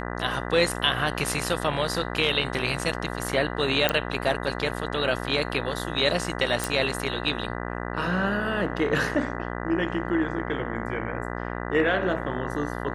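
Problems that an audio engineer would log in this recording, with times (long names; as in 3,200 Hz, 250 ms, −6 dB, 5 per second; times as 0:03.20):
mains buzz 60 Hz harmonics 33 −32 dBFS
0:03.89: click −6 dBFS
0:06.64: click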